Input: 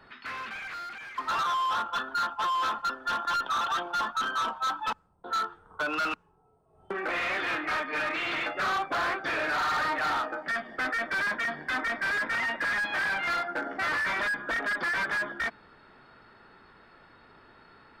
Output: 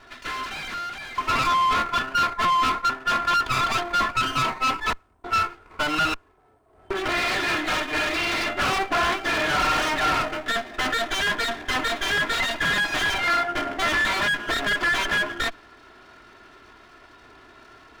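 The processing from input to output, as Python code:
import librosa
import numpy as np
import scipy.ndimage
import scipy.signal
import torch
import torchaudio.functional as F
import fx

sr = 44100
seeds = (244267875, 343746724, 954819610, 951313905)

y = fx.lower_of_two(x, sr, delay_ms=2.9)
y = F.gain(torch.from_numpy(y), 7.5).numpy()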